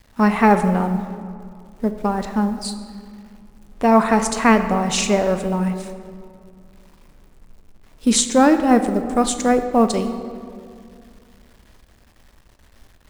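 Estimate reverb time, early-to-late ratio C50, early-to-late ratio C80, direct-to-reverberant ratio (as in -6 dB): 2.3 s, 9.5 dB, 10.5 dB, 8.0 dB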